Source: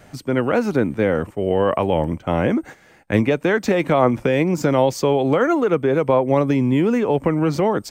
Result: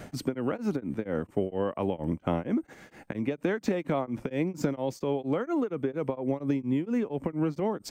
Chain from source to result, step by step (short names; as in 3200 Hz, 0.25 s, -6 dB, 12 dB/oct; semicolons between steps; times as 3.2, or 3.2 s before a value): bell 250 Hz +6 dB 1.6 oct; compressor 12:1, threshold -26 dBFS, peak gain reduction 19 dB; beating tremolo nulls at 4.3 Hz; gain +3 dB